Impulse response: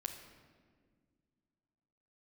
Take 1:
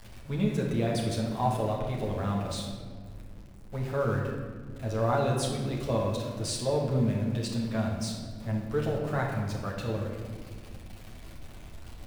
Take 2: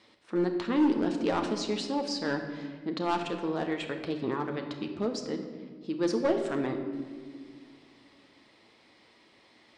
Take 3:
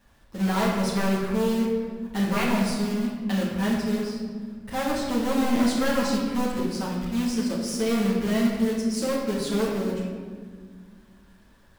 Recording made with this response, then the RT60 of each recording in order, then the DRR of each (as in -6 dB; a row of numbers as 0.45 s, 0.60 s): 2; 1.7 s, 1.8 s, 1.7 s; -2.5 dB, 4.0 dB, -6.5 dB